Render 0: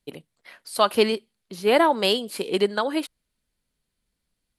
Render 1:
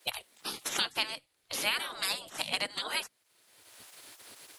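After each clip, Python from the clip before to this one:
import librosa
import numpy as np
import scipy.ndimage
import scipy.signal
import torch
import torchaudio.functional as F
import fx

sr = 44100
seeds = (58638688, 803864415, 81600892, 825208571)

y = fx.spec_gate(x, sr, threshold_db=-20, keep='weak')
y = fx.band_squash(y, sr, depth_pct=100)
y = y * 10.0 ** (2.0 / 20.0)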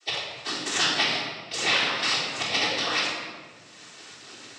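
y = fx.noise_vocoder(x, sr, seeds[0], bands=12)
y = fx.room_shoebox(y, sr, seeds[1], volume_m3=1500.0, walls='mixed', distance_m=3.5)
y = y * 10.0 ** (3.5 / 20.0)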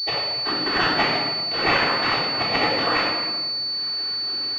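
y = fx.pwm(x, sr, carrier_hz=4500.0)
y = y * 10.0 ** (8.0 / 20.0)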